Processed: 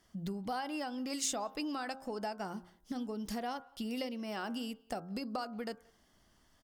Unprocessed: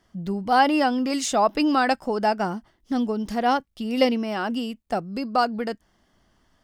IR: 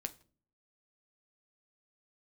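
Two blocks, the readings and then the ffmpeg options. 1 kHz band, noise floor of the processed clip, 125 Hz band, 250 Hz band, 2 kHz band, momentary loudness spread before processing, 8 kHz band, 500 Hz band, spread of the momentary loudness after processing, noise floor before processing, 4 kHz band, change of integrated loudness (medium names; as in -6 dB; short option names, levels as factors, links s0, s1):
-18.5 dB, -69 dBFS, -11.0 dB, -14.5 dB, -16.5 dB, 10 LU, -5.5 dB, -16.5 dB, 8 LU, -67 dBFS, -12.0 dB, -15.5 dB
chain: -filter_complex "[0:a]acompressor=threshold=0.0316:ratio=10,aemphasis=mode=production:type=cd,bandreject=f=88.88:t=h:w=4,bandreject=f=177.76:t=h:w=4,bandreject=f=266.64:t=h:w=4,bandreject=f=355.52:t=h:w=4,bandreject=f=444.4:t=h:w=4,bandreject=f=533.28:t=h:w=4,bandreject=f=622.16:t=h:w=4,bandreject=f=711.04:t=h:w=4,bandreject=f=799.92:t=h:w=4,bandreject=f=888.8:t=h:w=4,bandreject=f=977.68:t=h:w=4,bandreject=f=1066.56:t=h:w=4,bandreject=f=1155.44:t=h:w=4,bandreject=f=1244.32:t=h:w=4,bandreject=f=1333.2:t=h:w=4,bandreject=f=1422.08:t=h:w=4,bandreject=f=1510.96:t=h:w=4,bandreject=f=1599.84:t=h:w=4,asplit=2[s0][s1];[s1]adelay=180,highpass=300,lowpass=3400,asoftclip=type=hard:threshold=0.0447,volume=0.0562[s2];[s0][s2]amix=inputs=2:normalize=0,volume=0.562"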